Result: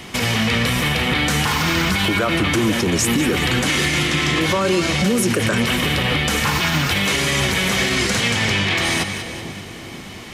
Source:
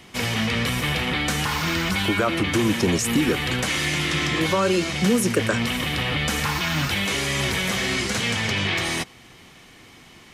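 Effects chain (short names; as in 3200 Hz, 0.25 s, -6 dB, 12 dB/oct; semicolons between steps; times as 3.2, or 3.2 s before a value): in parallel at +1 dB: compressor, threshold -31 dBFS, peak gain reduction 15 dB; on the sum: split-band echo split 720 Hz, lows 0.488 s, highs 0.192 s, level -11 dB; maximiser +13 dB; gain -8.5 dB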